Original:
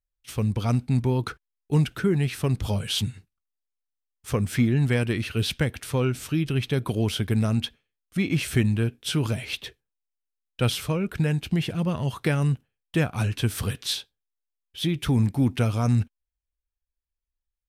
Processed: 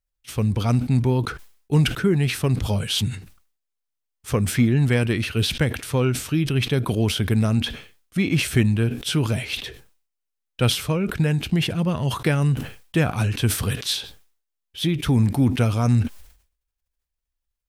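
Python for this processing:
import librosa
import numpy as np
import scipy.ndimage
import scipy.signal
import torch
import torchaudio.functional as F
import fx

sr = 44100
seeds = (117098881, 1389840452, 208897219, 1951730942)

y = fx.sustainer(x, sr, db_per_s=110.0)
y = y * 10.0 ** (3.0 / 20.0)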